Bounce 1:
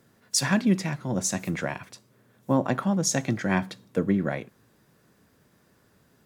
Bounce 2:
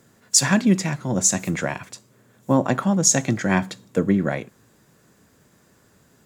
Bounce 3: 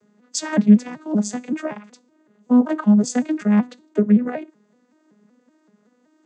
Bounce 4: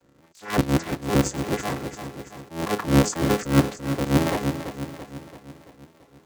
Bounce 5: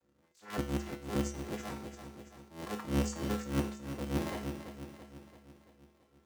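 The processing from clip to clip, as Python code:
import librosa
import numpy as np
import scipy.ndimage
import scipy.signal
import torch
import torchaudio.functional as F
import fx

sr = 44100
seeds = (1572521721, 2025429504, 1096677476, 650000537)

y1 = fx.peak_eq(x, sr, hz=7200.0, db=8.5, octaves=0.36)
y1 = y1 * librosa.db_to_amplitude(4.5)
y2 = fx.vocoder_arp(y1, sr, chord='minor triad', root=56, every_ms=189)
y2 = fx.hpss(y2, sr, part='harmonic', gain_db=-5)
y2 = y2 * librosa.db_to_amplitude(8.5)
y3 = fx.cycle_switch(y2, sr, every=3, mode='inverted')
y3 = fx.echo_feedback(y3, sr, ms=336, feedback_pct=55, wet_db=-11.0)
y3 = fx.attack_slew(y3, sr, db_per_s=160.0)
y4 = fx.comb_fb(y3, sr, f0_hz=71.0, decay_s=0.52, harmonics='odd', damping=0.0, mix_pct=80)
y4 = y4 * librosa.db_to_amplitude(-3.5)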